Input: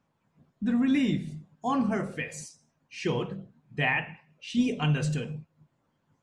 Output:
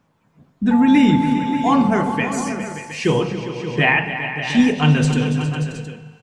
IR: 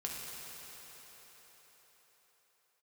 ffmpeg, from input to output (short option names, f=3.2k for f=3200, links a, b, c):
-filter_complex "[0:a]asettb=1/sr,asplit=3[a][b][c];[a]atrim=end=0.714[d];[b]atrim=start=0.71:end=2.2,asetpts=PTS-STARTPTS,afade=t=in:d=0.004:c=qsin,afade=t=out:st=1.486:d=0.004:c=qsin,aeval=exprs='val(0)+0.02*sin(2*PI*870*n/s)':c=same[e];[c]atrim=start=2.196[f];[d][e]acrossfade=d=0.004:c1=hsin:c2=qsin[g];[g][f]acrossfade=d=0.004:c1=qsin:c2=hsin,aecho=1:1:282|408|581|717:0.266|0.237|0.266|0.237,asplit=2[h][i];[1:a]atrim=start_sample=2205,asetrate=88200,aresample=44100,highshelf=f=5.1k:g=-10[j];[i][j]afir=irnorm=-1:irlink=0,volume=-3.5dB[k];[h][k]amix=inputs=2:normalize=0,volume=9dB"